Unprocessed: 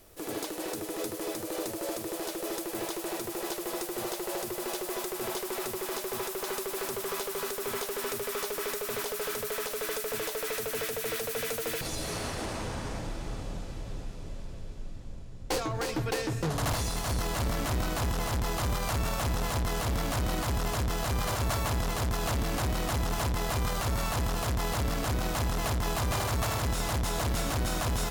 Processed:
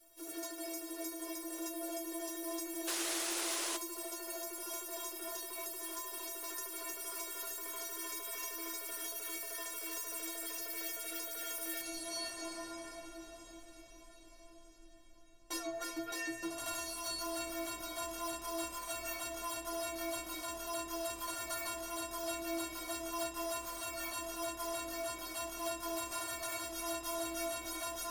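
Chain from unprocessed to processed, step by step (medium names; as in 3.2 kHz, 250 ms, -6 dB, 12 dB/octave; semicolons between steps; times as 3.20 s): tone controls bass -11 dB, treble +5 dB; inharmonic resonator 330 Hz, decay 0.42 s, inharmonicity 0.008; painted sound noise, 2.87–3.77 s, 300–11000 Hz -46 dBFS; trim +7.5 dB; AAC 64 kbps 48 kHz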